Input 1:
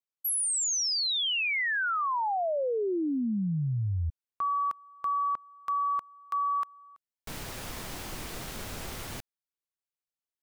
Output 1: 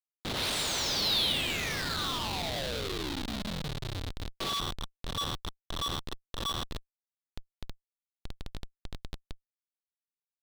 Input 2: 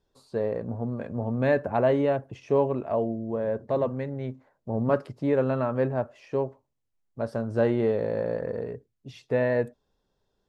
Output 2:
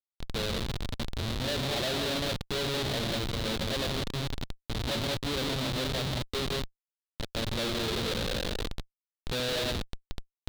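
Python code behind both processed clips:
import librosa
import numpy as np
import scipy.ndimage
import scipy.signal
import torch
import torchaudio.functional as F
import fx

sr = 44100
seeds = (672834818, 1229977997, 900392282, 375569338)

y = fx.delta_mod(x, sr, bps=64000, step_db=-29.0)
y = fx.hum_notches(y, sr, base_hz=60, count=4)
y = fx.rev_gated(y, sr, seeds[0], gate_ms=220, shape='rising', drr_db=1.5)
y = fx.schmitt(y, sr, flips_db=-23.5)
y = fx.peak_eq(y, sr, hz=3800.0, db=14.5, octaves=0.83)
y = y * 10.0 ** (-7.0 / 20.0)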